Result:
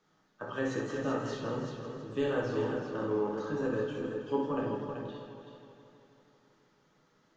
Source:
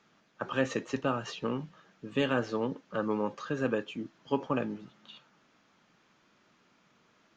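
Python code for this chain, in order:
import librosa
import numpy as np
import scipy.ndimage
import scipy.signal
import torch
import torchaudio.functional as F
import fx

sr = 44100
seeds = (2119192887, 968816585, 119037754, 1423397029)

p1 = fx.peak_eq(x, sr, hz=2500.0, db=-8.0, octaves=0.43)
p2 = p1 + fx.echo_multitap(p1, sr, ms=(63, 383), db=(-6.0, -6.5), dry=0)
p3 = fx.room_shoebox(p2, sr, seeds[0], volume_m3=41.0, walls='mixed', distance_m=0.59)
p4 = fx.echo_warbled(p3, sr, ms=161, feedback_pct=70, rate_hz=2.8, cents=82, wet_db=-9.5)
y = p4 * librosa.db_to_amplitude(-7.5)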